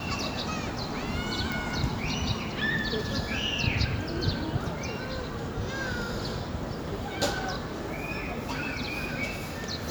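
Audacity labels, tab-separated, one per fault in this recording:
1.520000	1.520000	pop

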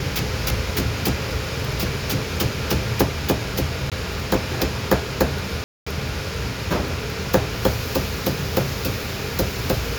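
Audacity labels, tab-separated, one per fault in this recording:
3.900000	3.920000	dropout 17 ms
5.640000	5.870000	dropout 225 ms

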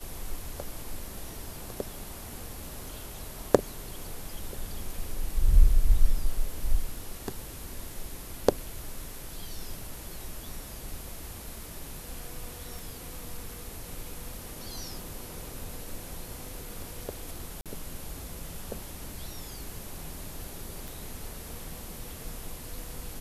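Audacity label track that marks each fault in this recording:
12.790000	12.790000	pop
17.610000	17.660000	dropout 47 ms
20.880000	20.880000	pop

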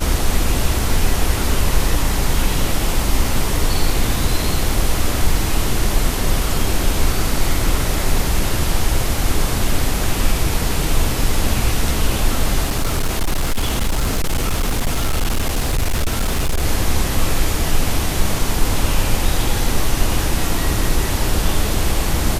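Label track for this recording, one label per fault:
12.640000	16.620000	clipped -13.5 dBFS

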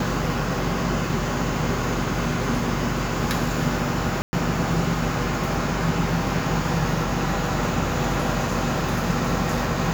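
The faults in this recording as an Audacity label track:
4.220000	4.330000	dropout 110 ms

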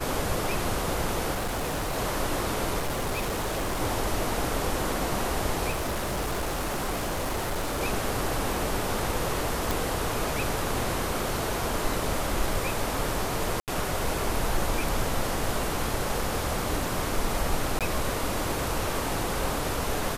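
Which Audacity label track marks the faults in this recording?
1.320000	1.980000	clipped -26 dBFS
2.780000	3.810000	clipped -25 dBFS
5.700000	7.820000	clipped -25.5 dBFS
9.710000	9.710000	pop
13.600000	13.680000	dropout 78 ms
17.790000	17.810000	dropout 17 ms

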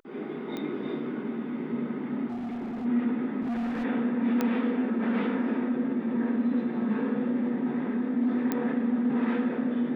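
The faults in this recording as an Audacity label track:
0.570000	0.570000	pop -22 dBFS
2.270000	2.860000	clipped -31.5 dBFS
3.410000	3.850000	clipped -27.5 dBFS
4.410000	4.410000	pop -14 dBFS
8.520000	8.520000	pop -14 dBFS

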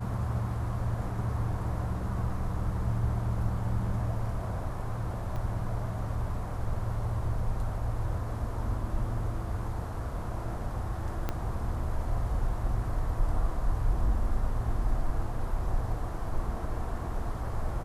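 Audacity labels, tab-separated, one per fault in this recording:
5.360000	5.360000	dropout 2.3 ms
11.290000	11.290000	pop -17 dBFS

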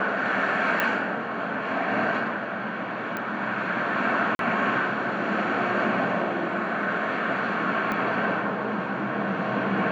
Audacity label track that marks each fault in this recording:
0.800000	0.800000	pop -10 dBFS
3.170000	3.170000	pop -16 dBFS
4.350000	4.390000	dropout 42 ms
7.920000	7.920000	pop -16 dBFS

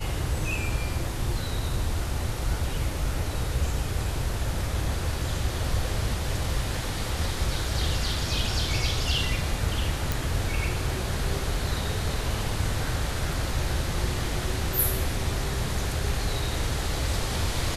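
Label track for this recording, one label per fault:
10.120000	10.120000	pop

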